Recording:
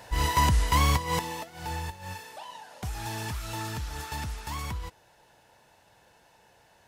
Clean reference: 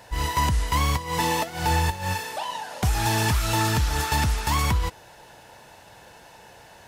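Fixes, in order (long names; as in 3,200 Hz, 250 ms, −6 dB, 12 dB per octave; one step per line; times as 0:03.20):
level correction +12 dB, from 0:01.19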